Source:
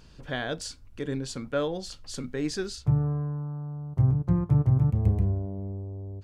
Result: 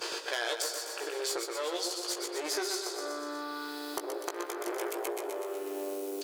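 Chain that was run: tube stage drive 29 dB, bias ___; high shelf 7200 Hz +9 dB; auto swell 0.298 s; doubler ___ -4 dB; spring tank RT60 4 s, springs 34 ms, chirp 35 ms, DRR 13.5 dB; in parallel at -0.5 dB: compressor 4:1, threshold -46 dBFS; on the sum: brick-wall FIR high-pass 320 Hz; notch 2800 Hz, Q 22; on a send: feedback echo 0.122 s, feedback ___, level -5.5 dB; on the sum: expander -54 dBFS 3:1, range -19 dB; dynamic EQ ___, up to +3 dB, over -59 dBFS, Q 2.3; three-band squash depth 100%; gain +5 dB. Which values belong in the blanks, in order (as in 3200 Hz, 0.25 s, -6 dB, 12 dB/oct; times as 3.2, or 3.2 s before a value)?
0.8, 17 ms, 42%, 1400 Hz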